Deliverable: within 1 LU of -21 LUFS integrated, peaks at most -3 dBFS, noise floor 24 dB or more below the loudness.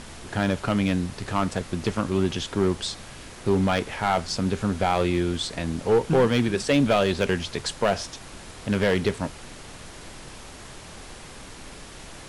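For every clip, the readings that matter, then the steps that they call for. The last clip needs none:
clipped 0.6%; flat tops at -13.5 dBFS; noise floor -43 dBFS; noise floor target -49 dBFS; loudness -25.0 LUFS; peak -13.5 dBFS; loudness target -21.0 LUFS
-> clip repair -13.5 dBFS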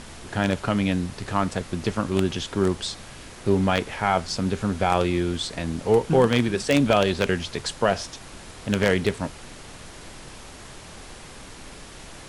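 clipped 0.0%; noise floor -43 dBFS; noise floor target -48 dBFS
-> noise print and reduce 6 dB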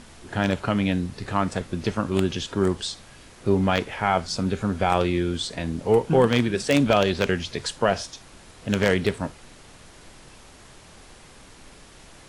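noise floor -49 dBFS; loudness -24.0 LUFS; peak -4.5 dBFS; loudness target -21.0 LUFS
-> gain +3 dB; limiter -3 dBFS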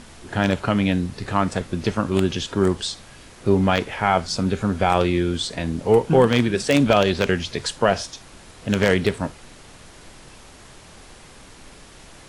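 loudness -21.0 LUFS; peak -3.0 dBFS; noise floor -46 dBFS

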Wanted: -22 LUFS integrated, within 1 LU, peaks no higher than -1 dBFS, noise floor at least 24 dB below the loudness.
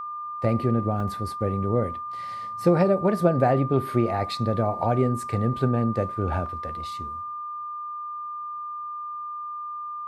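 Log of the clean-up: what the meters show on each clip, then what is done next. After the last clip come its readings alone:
dropouts 2; longest dropout 2.6 ms; steady tone 1200 Hz; tone level -31 dBFS; loudness -26.0 LUFS; peak -7.0 dBFS; loudness target -22.0 LUFS
-> interpolate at 1/6.46, 2.6 ms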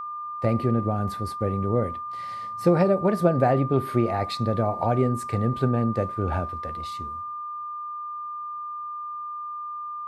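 dropouts 0; steady tone 1200 Hz; tone level -31 dBFS
-> notch 1200 Hz, Q 30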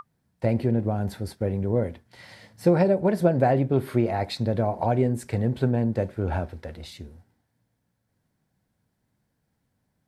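steady tone none; loudness -25.0 LUFS; peak -7.0 dBFS; loudness target -22.0 LUFS
-> gain +3 dB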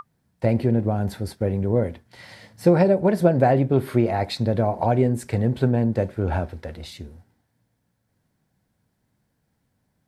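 loudness -22.0 LUFS; peak -4.0 dBFS; noise floor -72 dBFS

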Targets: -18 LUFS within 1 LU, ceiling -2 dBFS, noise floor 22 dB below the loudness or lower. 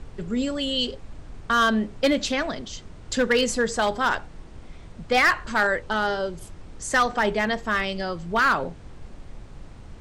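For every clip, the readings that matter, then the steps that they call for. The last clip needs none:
clipped 0.5%; flat tops at -13.5 dBFS; noise floor -44 dBFS; noise floor target -46 dBFS; loudness -23.5 LUFS; peak -13.5 dBFS; loudness target -18.0 LUFS
-> clip repair -13.5 dBFS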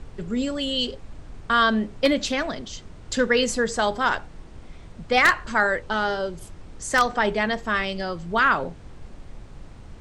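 clipped 0.0%; noise floor -44 dBFS; noise floor target -45 dBFS
-> noise print and reduce 6 dB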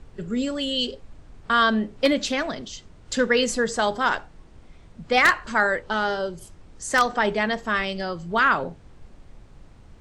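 noise floor -50 dBFS; loudness -23.0 LUFS; peak -4.5 dBFS; loudness target -18.0 LUFS
-> gain +5 dB; limiter -2 dBFS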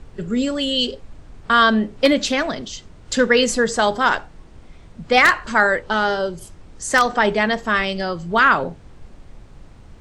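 loudness -18.0 LUFS; peak -2.0 dBFS; noise floor -45 dBFS

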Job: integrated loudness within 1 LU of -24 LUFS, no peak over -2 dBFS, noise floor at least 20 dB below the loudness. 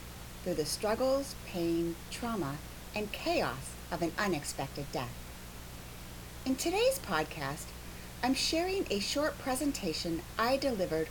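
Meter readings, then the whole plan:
hum 60 Hz; harmonics up to 180 Hz; hum level -48 dBFS; noise floor -47 dBFS; noise floor target -54 dBFS; loudness -33.5 LUFS; peak -15.0 dBFS; loudness target -24.0 LUFS
-> de-hum 60 Hz, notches 3; noise print and reduce 7 dB; gain +9.5 dB

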